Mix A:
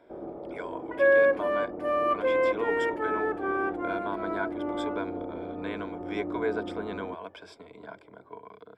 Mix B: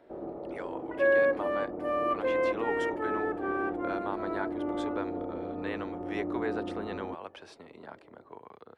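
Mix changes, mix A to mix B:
speech: remove ripple EQ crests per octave 1.7, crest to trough 12 dB; second sound -3.5 dB

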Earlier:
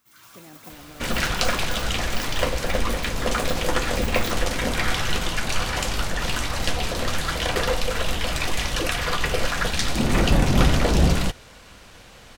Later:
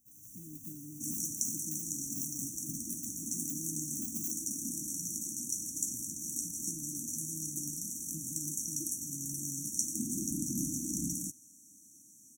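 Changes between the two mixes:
second sound: add HPF 470 Hz 12 dB/oct; master: add brick-wall FIR band-stop 330–5600 Hz

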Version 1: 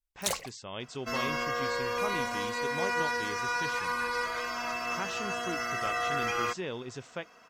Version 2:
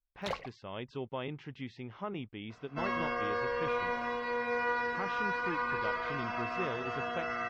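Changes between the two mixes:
second sound: entry +1.70 s; master: add air absorption 320 m

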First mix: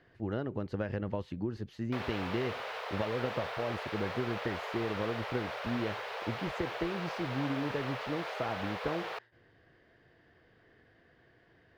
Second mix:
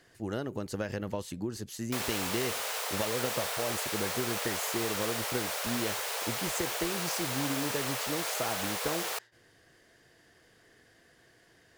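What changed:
speech: add bell 83 Hz -3 dB 1.4 oct; master: remove air absorption 340 m

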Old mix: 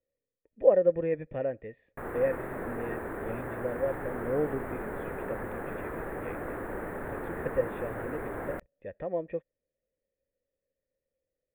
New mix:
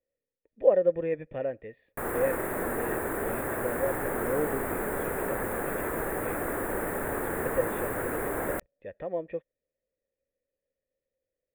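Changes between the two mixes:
background +5.5 dB; master: add tone controls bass -3 dB, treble +14 dB

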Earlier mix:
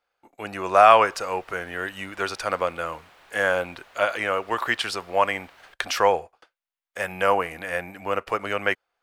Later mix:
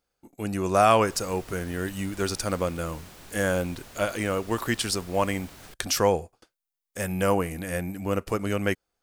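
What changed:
speech -7.5 dB; master: remove three-band isolator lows -19 dB, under 540 Hz, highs -17 dB, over 3500 Hz

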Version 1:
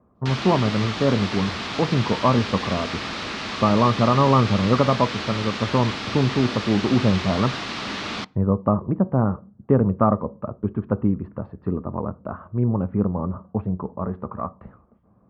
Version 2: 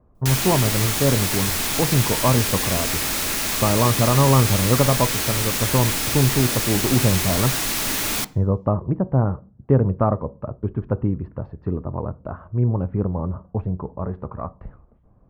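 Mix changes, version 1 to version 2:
background: send +11.0 dB; master: remove speaker cabinet 100–4400 Hz, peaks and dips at 140 Hz -4 dB, 210 Hz +6 dB, 1200 Hz +5 dB

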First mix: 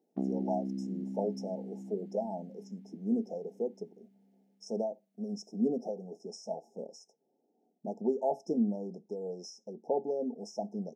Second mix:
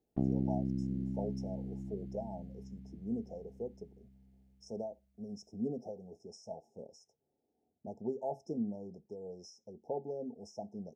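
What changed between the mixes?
speech -7.0 dB; master: remove brick-wall FIR high-pass 160 Hz

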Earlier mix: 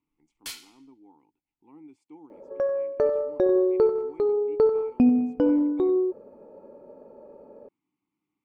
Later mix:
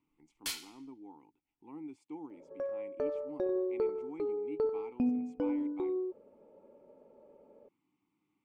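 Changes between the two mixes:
speech +3.5 dB; second sound -11.5 dB

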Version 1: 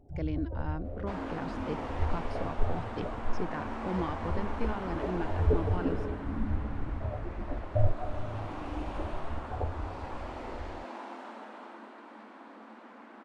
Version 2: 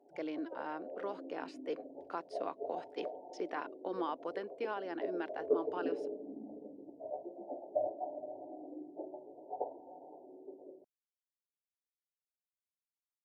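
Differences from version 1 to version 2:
first sound: add brick-wall FIR low-pass 1000 Hz; second sound: muted; master: add HPF 340 Hz 24 dB/oct

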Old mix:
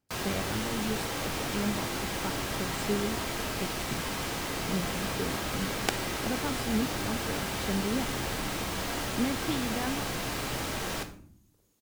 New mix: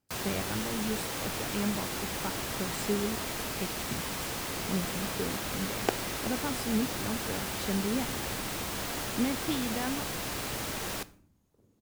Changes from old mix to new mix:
first sound: send -11.0 dB; second sound: add tilt -4.5 dB/oct; master: add high shelf 7300 Hz +6.5 dB

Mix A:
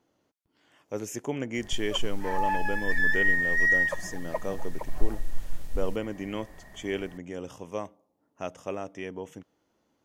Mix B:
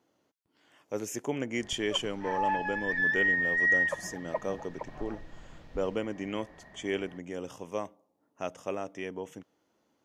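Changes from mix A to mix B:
background: add air absorption 210 m; master: add HPF 140 Hz 6 dB/oct

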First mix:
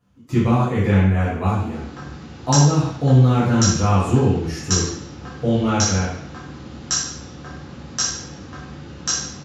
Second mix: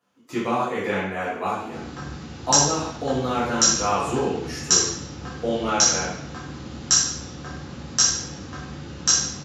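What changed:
speech: add HPF 400 Hz 12 dB/oct; background: add high shelf 5300 Hz +7 dB

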